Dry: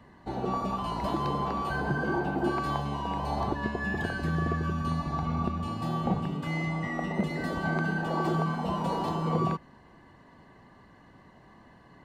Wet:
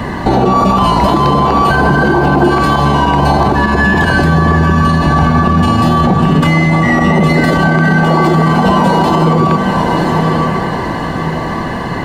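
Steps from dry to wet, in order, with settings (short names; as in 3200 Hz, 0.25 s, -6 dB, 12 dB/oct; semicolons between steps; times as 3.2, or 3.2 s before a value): compressor 6:1, threshold -37 dBFS, peak gain reduction 14 dB; on a send: diffused feedback echo 1.038 s, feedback 42%, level -9 dB; on the sum: maximiser +36 dB; gain -1 dB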